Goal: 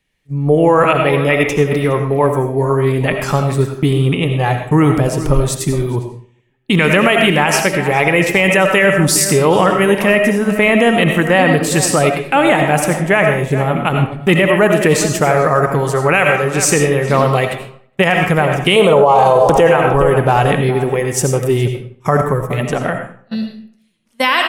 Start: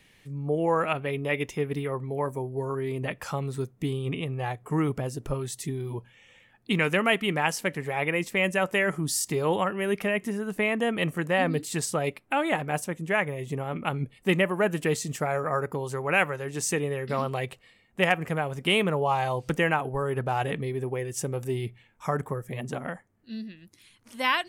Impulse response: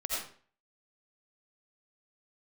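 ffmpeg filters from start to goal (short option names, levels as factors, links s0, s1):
-filter_complex "[0:a]asettb=1/sr,asplit=3[s0][s1][s2];[s0]atrim=end=18.764[s3];[s1]atrim=start=18.76:end=19.67,asetpts=PTS-STARTPTS,afade=t=in:d=0.004:c=qsin,afade=t=out:st=0.906:d=0.004:c=qsin,equalizer=f=500:t=o:w=1:g=11,equalizer=f=1000:t=o:w=1:g=9,equalizer=f=2000:t=o:w=1:g=-8,equalizer=f=4000:t=o:w=1:g=4,equalizer=f=8000:t=o:w=1:g=6[s4];[s2]atrim=start=19.666[s5];[s3][s4]acrossfade=d=0.004:c1=hsin:c2=qsin[s6];[s6][s5]acrossfade=d=0.004:c1=qsin:c2=hsin,asplit=2[s7][s8];[s8]adelay=415,lowpass=f=1900:p=1,volume=0.211,asplit=2[s9][s10];[s10]adelay=415,lowpass=f=1900:p=1,volume=0.22,asplit=2[s11][s12];[s12]adelay=415,lowpass=f=1900:p=1,volume=0.22[s13];[s7][s9][s11][s13]amix=inputs=4:normalize=0,agate=range=0.0501:threshold=0.0141:ratio=16:detection=peak,asplit=2[s14][s15];[1:a]atrim=start_sample=2205,lowshelf=f=88:g=10.5[s16];[s15][s16]afir=irnorm=-1:irlink=0,volume=0.473[s17];[s14][s17]amix=inputs=2:normalize=0,alimiter=level_in=4.47:limit=0.891:release=50:level=0:latency=1,volume=0.891"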